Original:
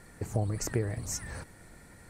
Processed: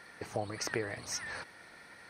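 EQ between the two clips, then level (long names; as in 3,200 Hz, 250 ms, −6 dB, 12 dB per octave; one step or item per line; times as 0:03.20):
Savitzky-Golay smoothing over 15 samples
high-pass filter 1,300 Hz 6 dB per octave
+7.5 dB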